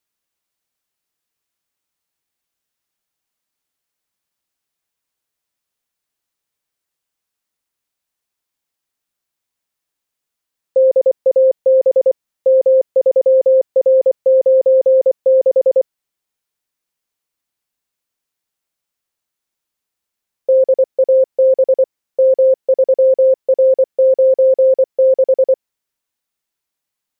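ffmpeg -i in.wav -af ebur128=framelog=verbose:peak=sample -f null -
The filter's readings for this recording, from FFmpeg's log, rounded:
Integrated loudness:
  I:         -13.5 LUFS
  Threshold: -23.5 LUFS
Loudness range:
  LRA:         8.5 LU
  Threshold: -35.0 LUFS
  LRA low:   -21.3 LUFS
  LRA high:  -12.9 LUFS
Sample peak:
  Peak:       -6.8 dBFS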